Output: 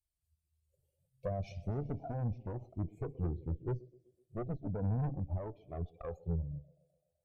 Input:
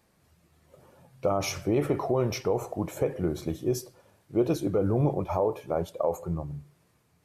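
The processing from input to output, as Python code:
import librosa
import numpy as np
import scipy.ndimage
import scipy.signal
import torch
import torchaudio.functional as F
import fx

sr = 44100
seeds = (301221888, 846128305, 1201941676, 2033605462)

y = fx.bin_expand(x, sr, power=1.5)
y = fx.env_phaser(y, sr, low_hz=220.0, high_hz=1600.0, full_db=-30.0)
y = fx.rider(y, sr, range_db=10, speed_s=2.0)
y = scipy.signal.sosfilt(scipy.signal.ellip(3, 1.0, 40, [750.0, 2300.0], 'bandstop', fs=sr, output='sos'), y)
y = fx.bass_treble(y, sr, bass_db=12, treble_db=8)
y = fx.env_lowpass_down(y, sr, base_hz=680.0, full_db=-22.5)
y = fx.echo_thinned(y, sr, ms=127, feedback_pct=68, hz=220.0, wet_db=-19)
y = fx.tube_stage(y, sr, drive_db=23.0, bias=0.55)
y = fx.comb_cascade(y, sr, direction='rising', hz=0.36)
y = y * 10.0 ** (-2.5 / 20.0)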